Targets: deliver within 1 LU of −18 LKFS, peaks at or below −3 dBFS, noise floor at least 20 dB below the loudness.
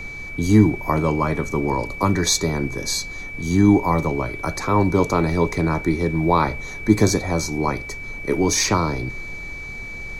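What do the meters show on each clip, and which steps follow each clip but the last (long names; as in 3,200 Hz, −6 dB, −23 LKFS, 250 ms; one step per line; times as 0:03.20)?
interfering tone 2,300 Hz; level of the tone −32 dBFS; background noise floor −33 dBFS; target noise floor −41 dBFS; integrated loudness −20.5 LKFS; sample peak −1.5 dBFS; target loudness −18.0 LKFS
→ notch filter 2,300 Hz, Q 30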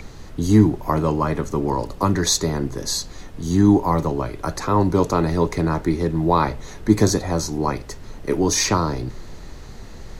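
interfering tone none found; background noise floor −38 dBFS; target noise floor −41 dBFS
→ noise reduction from a noise print 6 dB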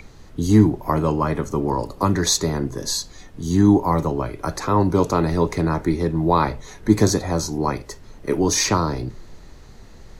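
background noise floor −44 dBFS; integrated loudness −20.5 LKFS; sample peak −2.0 dBFS; target loudness −18.0 LKFS
→ level +2.5 dB
brickwall limiter −3 dBFS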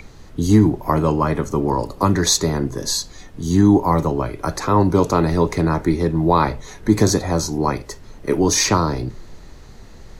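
integrated loudness −18.5 LKFS; sample peak −3.0 dBFS; background noise floor −41 dBFS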